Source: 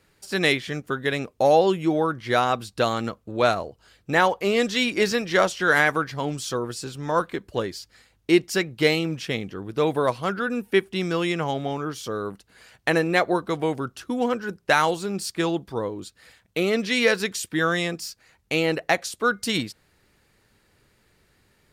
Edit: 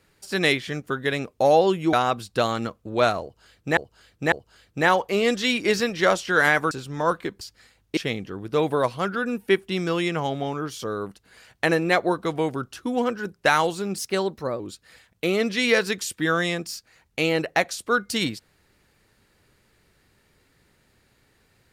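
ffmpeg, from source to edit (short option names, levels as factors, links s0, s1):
-filter_complex "[0:a]asplit=9[s0][s1][s2][s3][s4][s5][s6][s7][s8];[s0]atrim=end=1.932[s9];[s1]atrim=start=2.348:end=4.192[s10];[s2]atrim=start=3.638:end=4.192[s11];[s3]atrim=start=3.638:end=6.032[s12];[s4]atrim=start=6.798:end=7.502[s13];[s5]atrim=start=7.758:end=8.322[s14];[s6]atrim=start=9.208:end=15.224[s15];[s7]atrim=start=15.22:end=15.93,asetpts=PTS-STARTPTS,asetrate=50715,aresample=44100[s16];[s8]atrim=start=15.926[s17];[s9][s10]acrossfade=d=0.004:c1=hsin:c2=hsin[s18];[s18][s11]acrossfade=d=0.004:c1=hsin:c2=hsin[s19];[s19][s12]acrossfade=d=0.004:c1=hsin:c2=hsin[s20];[s20][s13]acrossfade=d=0.004:c1=hsin:c2=hsin[s21];[s21][s14]acrossfade=d=0.004:c1=hsin:c2=hsin[s22];[s22][s15]acrossfade=d=0.004:c1=hsin:c2=hsin[s23];[s23][s16]acrossfade=d=0.004:c1=hsin:c2=hsin[s24];[s24][s17]acrossfade=d=0.004:c1=hsin:c2=hsin"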